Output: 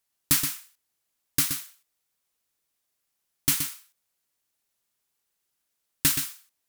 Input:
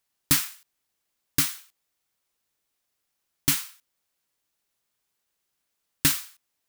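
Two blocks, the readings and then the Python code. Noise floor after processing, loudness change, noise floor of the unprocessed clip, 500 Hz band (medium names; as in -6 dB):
-79 dBFS, -0.5 dB, -79 dBFS, -2.5 dB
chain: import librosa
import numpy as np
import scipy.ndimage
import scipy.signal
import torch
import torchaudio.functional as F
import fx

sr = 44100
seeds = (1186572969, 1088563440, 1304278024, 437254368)

y = fx.peak_eq(x, sr, hz=12000.0, db=4.0, octaves=1.6)
y = y + 10.0 ** (-7.5 / 20.0) * np.pad(y, (int(124 * sr / 1000.0), 0))[:len(y)]
y = y * 10.0 ** (-3.0 / 20.0)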